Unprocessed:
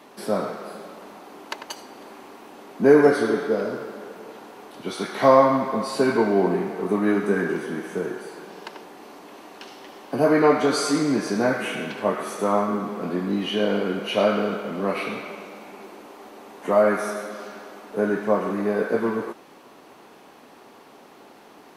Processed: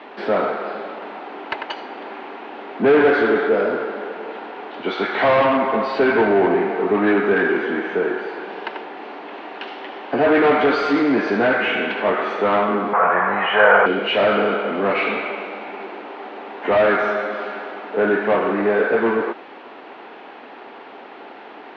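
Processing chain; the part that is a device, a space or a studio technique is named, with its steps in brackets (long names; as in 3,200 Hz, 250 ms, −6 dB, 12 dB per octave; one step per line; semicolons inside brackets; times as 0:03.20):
overdrive pedal into a guitar cabinet (mid-hump overdrive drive 25 dB, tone 2,000 Hz, clips at −1.5 dBFS; loudspeaker in its box 93–3,500 Hz, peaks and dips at 94 Hz −4 dB, 160 Hz −8 dB, 570 Hz −3 dB, 1,100 Hz −6 dB)
0:12.93–0:13.86: drawn EQ curve 160 Hz 0 dB, 290 Hz −19 dB, 520 Hz +5 dB, 1,100 Hz +15 dB, 1,800 Hz +10 dB, 4,400 Hz −15 dB
level −3.5 dB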